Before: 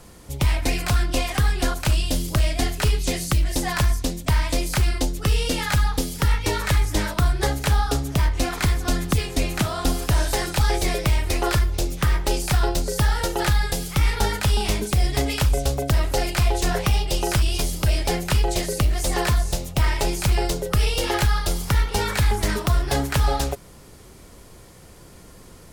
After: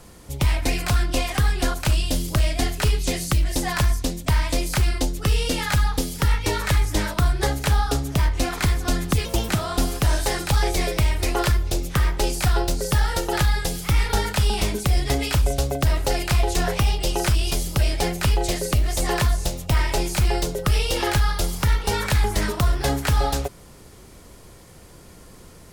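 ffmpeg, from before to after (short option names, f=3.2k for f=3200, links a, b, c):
-filter_complex "[0:a]asplit=3[a][b][c];[a]atrim=end=9.254[d];[b]atrim=start=9.25:end=9.56,asetpts=PTS-STARTPTS,asetrate=57330,aresample=44100,atrim=end_sample=10516,asetpts=PTS-STARTPTS[e];[c]atrim=start=9.556[f];[d][e]acrossfade=d=0.004:c1=hsin:c2=hsin[g];[g][f]acrossfade=d=0.004:c1=hsin:c2=hsin"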